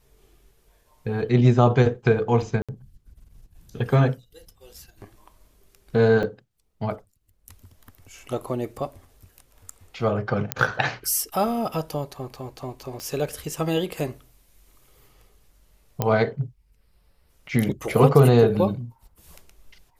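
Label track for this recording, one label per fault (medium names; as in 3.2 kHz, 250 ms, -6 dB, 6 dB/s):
2.620000	2.690000	dropout 66 ms
6.230000	6.230000	dropout 3.9 ms
10.520000	10.520000	pop -4 dBFS
13.000000	13.000000	pop -22 dBFS
16.020000	16.020000	pop -9 dBFS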